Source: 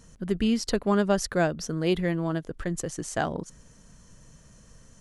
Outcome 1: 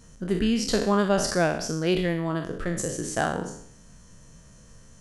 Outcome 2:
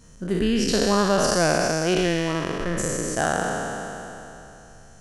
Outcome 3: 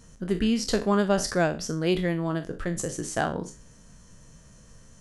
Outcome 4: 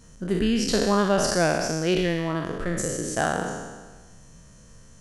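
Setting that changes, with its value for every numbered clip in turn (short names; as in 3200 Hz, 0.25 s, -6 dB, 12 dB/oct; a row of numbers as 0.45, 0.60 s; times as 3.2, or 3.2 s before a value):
spectral trails, RT60: 0.65, 3.08, 0.31, 1.38 s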